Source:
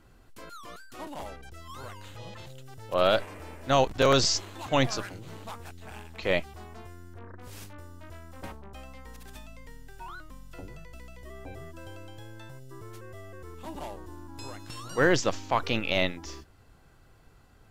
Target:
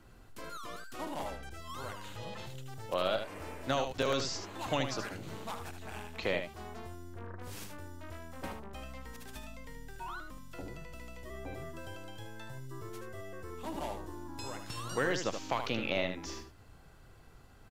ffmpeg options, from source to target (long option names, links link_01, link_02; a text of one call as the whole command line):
ffmpeg -i in.wav -filter_complex "[0:a]acrossover=split=110|2200[link_01][link_02][link_03];[link_01]acompressor=threshold=-47dB:ratio=4[link_04];[link_02]acompressor=threshold=-31dB:ratio=4[link_05];[link_03]acompressor=threshold=-40dB:ratio=4[link_06];[link_04][link_05][link_06]amix=inputs=3:normalize=0,volume=18dB,asoftclip=hard,volume=-18dB,asplit=2[link_07][link_08];[link_08]aecho=0:1:77:0.422[link_09];[link_07][link_09]amix=inputs=2:normalize=0" out.wav